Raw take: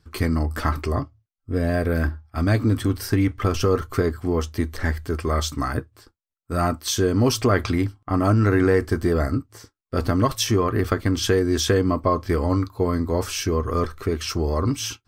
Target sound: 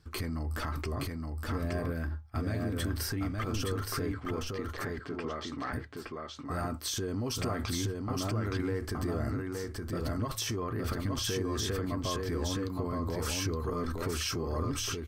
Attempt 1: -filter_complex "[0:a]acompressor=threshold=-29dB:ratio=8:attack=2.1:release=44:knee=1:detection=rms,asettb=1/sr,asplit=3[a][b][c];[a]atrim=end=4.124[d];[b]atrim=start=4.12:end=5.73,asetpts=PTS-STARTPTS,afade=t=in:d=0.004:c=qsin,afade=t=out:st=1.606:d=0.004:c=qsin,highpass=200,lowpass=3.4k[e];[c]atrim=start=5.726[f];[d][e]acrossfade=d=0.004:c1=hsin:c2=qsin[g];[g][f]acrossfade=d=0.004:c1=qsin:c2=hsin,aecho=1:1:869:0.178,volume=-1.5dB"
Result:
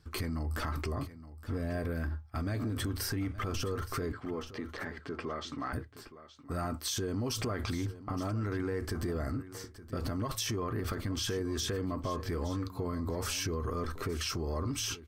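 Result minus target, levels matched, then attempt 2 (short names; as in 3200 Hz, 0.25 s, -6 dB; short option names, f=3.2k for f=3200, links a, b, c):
echo-to-direct -12 dB
-filter_complex "[0:a]acompressor=threshold=-29dB:ratio=8:attack=2.1:release=44:knee=1:detection=rms,asettb=1/sr,asplit=3[a][b][c];[a]atrim=end=4.124[d];[b]atrim=start=4.12:end=5.73,asetpts=PTS-STARTPTS,afade=t=in:d=0.004:c=qsin,afade=t=out:st=1.606:d=0.004:c=qsin,highpass=200,lowpass=3.4k[e];[c]atrim=start=5.726[f];[d][e]acrossfade=d=0.004:c1=hsin:c2=qsin[g];[g][f]acrossfade=d=0.004:c1=qsin:c2=hsin,aecho=1:1:869:0.708,volume=-1.5dB"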